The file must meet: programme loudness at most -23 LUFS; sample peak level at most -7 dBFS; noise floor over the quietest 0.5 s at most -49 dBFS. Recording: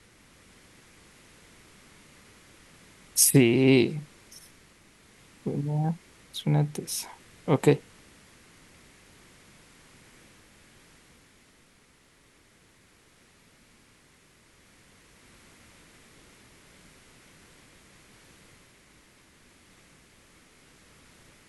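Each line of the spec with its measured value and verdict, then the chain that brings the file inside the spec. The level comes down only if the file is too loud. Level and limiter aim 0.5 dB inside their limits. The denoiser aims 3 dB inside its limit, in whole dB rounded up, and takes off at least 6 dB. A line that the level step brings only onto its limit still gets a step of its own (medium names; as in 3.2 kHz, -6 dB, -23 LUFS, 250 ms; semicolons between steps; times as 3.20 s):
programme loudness -25.0 LUFS: pass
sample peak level -6.0 dBFS: fail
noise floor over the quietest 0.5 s -61 dBFS: pass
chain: peak limiter -7.5 dBFS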